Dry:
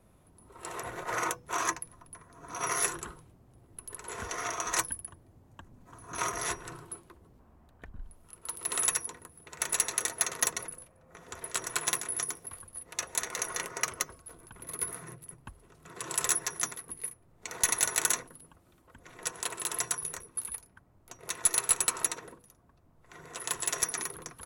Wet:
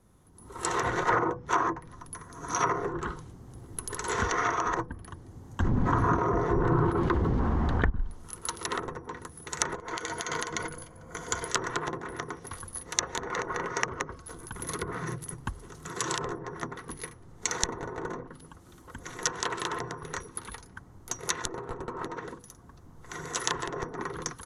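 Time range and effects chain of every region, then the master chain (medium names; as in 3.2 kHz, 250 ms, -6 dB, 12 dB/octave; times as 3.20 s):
5.60–7.90 s: treble shelf 12 kHz -6.5 dB + level flattener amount 70%
9.75–11.48 s: rippled EQ curve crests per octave 1.8, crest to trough 8 dB + compression 10:1, threshold -32 dBFS
whole clip: level rider gain up to 13 dB; graphic EQ with 31 bands 630 Hz -9 dB, 2.5 kHz -8 dB, 6.3 kHz +6 dB, 16 kHz -6 dB; low-pass that closes with the level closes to 640 Hz, closed at -16.5 dBFS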